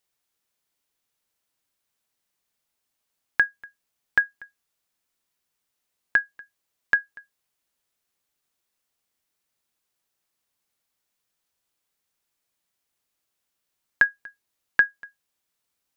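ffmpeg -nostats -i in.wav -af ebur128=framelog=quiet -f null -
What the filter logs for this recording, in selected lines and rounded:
Integrated loudness:
  I:         -24.7 LUFS
  Threshold: -36.6 LUFS
Loudness range:
  LRA:         5.1 LU
  Threshold: -50.9 LUFS
  LRA low:   -34.0 LUFS
  LRA high:  -28.8 LUFS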